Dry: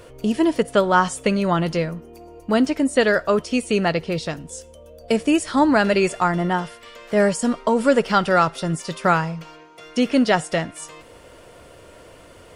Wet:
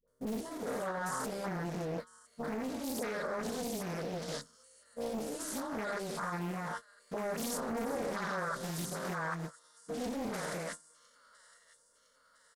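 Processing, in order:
spectrum averaged block by block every 200 ms
downward compressor 4 to 1, threshold −23 dBFS, peak gain reduction 7 dB
mains-hum notches 50/100/150/200/250/300/350/400 Hz
double-tracking delay 23 ms −13.5 dB
all-pass dispersion highs, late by 78 ms, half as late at 610 Hz
brickwall limiter −25.5 dBFS, peak gain reduction 12 dB
low-shelf EQ 290 Hz −4.5 dB
noise gate −36 dBFS, range −27 dB
high-shelf EQ 7,000 Hz +9 dB
phaser with its sweep stopped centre 510 Hz, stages 8
delay with a high-pass on its return 1,008 ms, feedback 59%, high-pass 1,600 Hz, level −18.5 dB
highs frequency-modulated by the lows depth 0.75 ms

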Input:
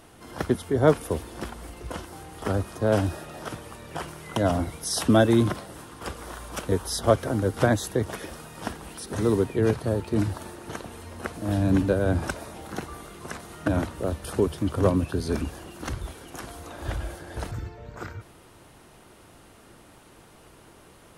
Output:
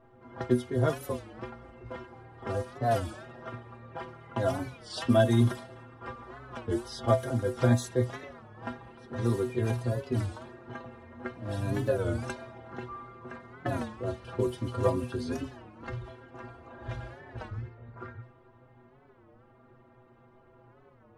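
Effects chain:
low-pass that shuts in the quiet parts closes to 1,200 Hz, open at −19 dBFS
stiff-string resonator 120 Hz, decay 0.25 s, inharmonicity 0.008
wow of a warped record 33 1/3 rpm, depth 160 cents
level +4.5 dB

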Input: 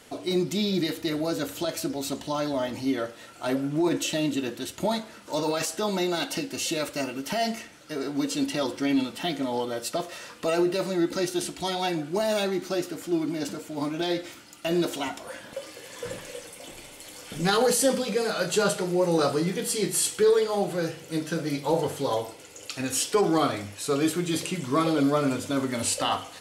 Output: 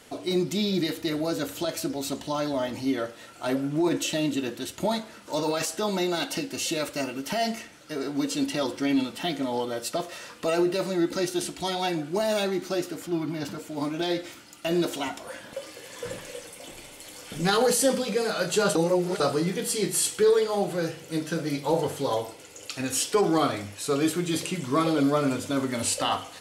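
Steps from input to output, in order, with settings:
0:13.06–0:13.58: octave-band graphic EQ 125/250/500/1,000/8,000 Hz +7/−3/−4/+4/−7 dB
0:18.75–0:19.20: reverse

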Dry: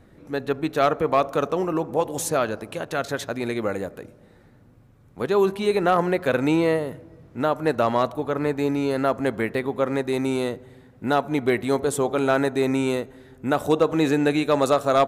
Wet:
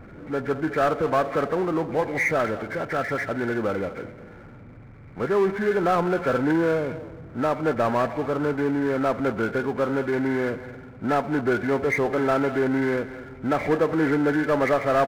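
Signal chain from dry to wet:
hearing-aid frequency compression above 1,300 Hz 4 to 1
far-end echo of a speakerphone 210 ms, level −19 dB
power curve on the samples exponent 0.7
level −4.5 dB

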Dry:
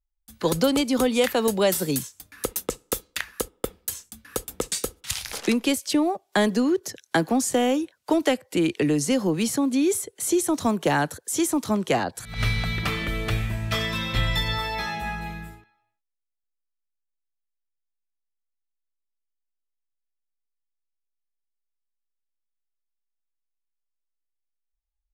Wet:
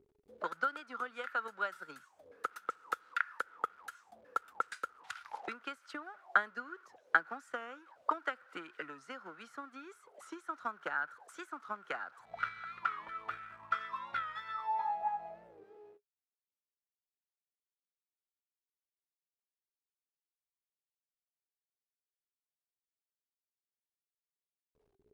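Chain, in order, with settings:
converter with a step at zero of −32.5 dBFS
transient designer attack +11 dB, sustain −4 dB
envelope filter 350–1,400 Hz, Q 14, up, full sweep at −19.5 dBFS
wow of a warped record 45 rpm, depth 100 cents
level +1 dB

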